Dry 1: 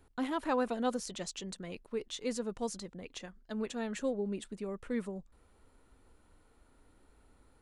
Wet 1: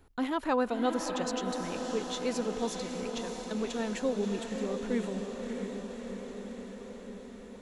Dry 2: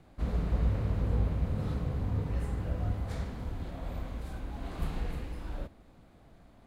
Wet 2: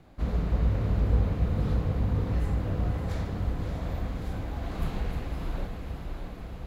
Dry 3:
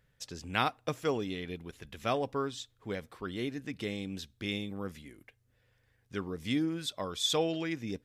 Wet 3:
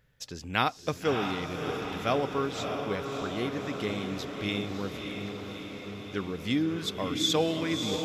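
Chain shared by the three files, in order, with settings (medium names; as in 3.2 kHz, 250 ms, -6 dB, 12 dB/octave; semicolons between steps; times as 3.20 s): peaking EQ 8.8 kHz -10 dB 0.2 oct; on a send: echo that smears into a reverb 618 ms, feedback 70%, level -5.5 dB; on the sum: trim +3 dB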